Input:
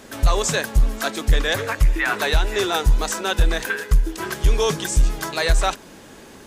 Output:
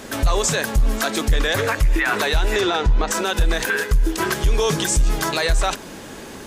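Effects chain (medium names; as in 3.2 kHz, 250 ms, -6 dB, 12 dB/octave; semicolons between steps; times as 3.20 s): 2.60–3.10 s: low-pass 5.7 kHz -> 2.5 kHz 12 dB/octave; peak limiter -17.5 dBFS, peak gain reduction 9.5 dB; trim +7 dB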